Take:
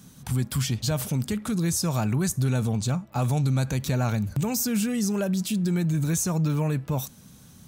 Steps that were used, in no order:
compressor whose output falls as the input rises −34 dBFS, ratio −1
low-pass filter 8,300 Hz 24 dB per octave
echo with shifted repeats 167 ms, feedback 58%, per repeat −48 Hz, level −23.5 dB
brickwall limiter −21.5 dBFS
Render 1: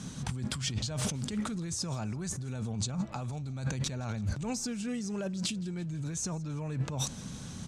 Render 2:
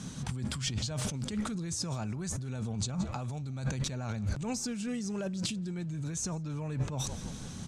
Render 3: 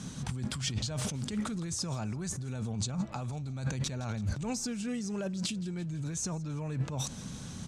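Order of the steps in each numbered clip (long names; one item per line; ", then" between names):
compressor whose output falls as the input rises, then low-pass filter, then brickwall limiter, then echo with shifted repeats
echo with shifted repeats, then compressor whose output falls as the input rises, then brickwall limiter, then low-pass filter
compressor whose output falls as the input rises, then echo with shifted repeats, then brickwall limiter, then low-pass filter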